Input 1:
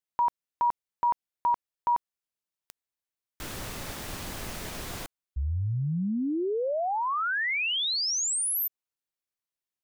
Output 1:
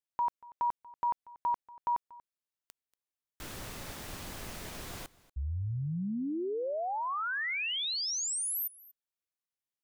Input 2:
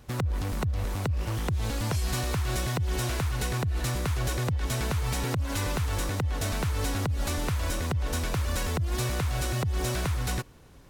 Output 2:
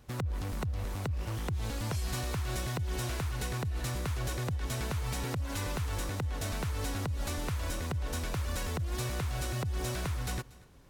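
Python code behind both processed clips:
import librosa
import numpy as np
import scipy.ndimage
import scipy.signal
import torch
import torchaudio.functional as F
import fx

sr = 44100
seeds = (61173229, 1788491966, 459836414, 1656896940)

y = x + 10.0 ** (-21.5 / 20.0) * np.pad(x, (int(236 * sr / 1000.0), 0))[:len(x)]
y = F.gain(torch.from_numpy(y), -5.5).numpy()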